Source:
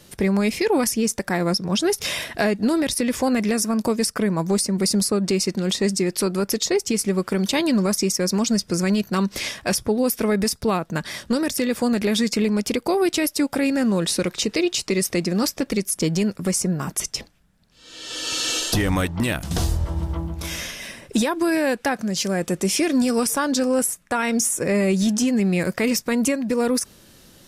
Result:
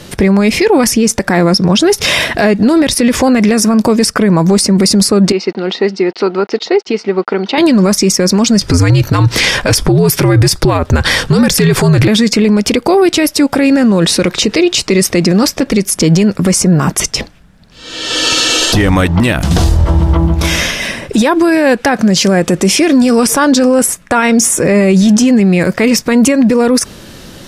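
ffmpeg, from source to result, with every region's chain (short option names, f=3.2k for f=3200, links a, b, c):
-filter_complex "[0:a]asettb=1/sr,asplit=3[a][b][c];[a]atrim=end=5.324[d];[b]atrim=start=5.32:end=7.58,asetpts=PTS-STARTPTS,afade=t=in:d=0.004:c=qsin,afade=t=out:st=2.256:d=0.004:c=qsin,aeval=exprs='val(0)*gte(abs(val(0)),0.00668)':c=same,highpass=500,equalizer=f=570:t=q:w=4:g=-9,equalizer=f=1.1k:t=q:w=4:g=-8,equalizer=f=1.7k:t=q:w=4:g=-9,equalizer=f=2.4k:t=q:w=4:g=-8,equalizer=f=3.4k:t=q:w=4:g=-9,lowpass=f=3.5k:w=0.5412,lowpass=f=3.5k:w=1.3066[e];[c]atrim=start=7.576[f];[d][e]acrossfade=d=0.004:c1=hsin:c2=qsin[g];[g][f]acrossfade=d=0.004:c1=qsin:c2=hsin,asettb=1/sr,asplit=3[h][i][j];[h]atrim=end=8.614[k];[i]atrim=start=8.61:end=12.08,asetpts=PTS-STARTPTS,afade=t=in:d=0.004:c=qsin,afade=t=out:st=3.466:d=0.004:c=qsin,afreqshift=-80,acontrast=64[l];[j]atrim=start=12.076[m];[k][l]acrossfade=d=0.004:c1=hsin:c2=qsin[n];[n][m]acrossfade=d=0.004:c1=qsin:c2=hsin,highshelf=f=7.3k:g=-11.5,alimiter=level_in=19.5dB:limit=-1dB:release=50:level=0:latency=1,volume=-1dB"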